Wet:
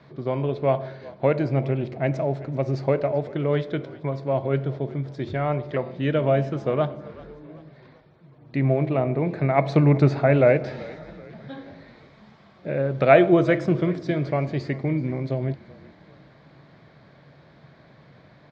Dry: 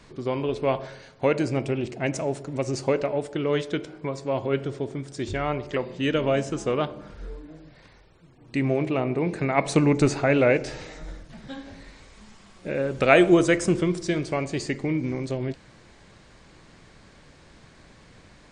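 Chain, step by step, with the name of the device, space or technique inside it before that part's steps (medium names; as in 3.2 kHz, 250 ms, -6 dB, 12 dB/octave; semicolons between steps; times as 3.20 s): frequency-shifting delay pedal into a guitar cabinet (frequency-shifting echo 383 ms, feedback 51%, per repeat -40 Hz, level -20 dB; cabinet simulation 100–4000 Hz, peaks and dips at 140 Hz +10 dB, 640 Hz +7 dB, 2.8 kHz -8 dB); trim -1 dB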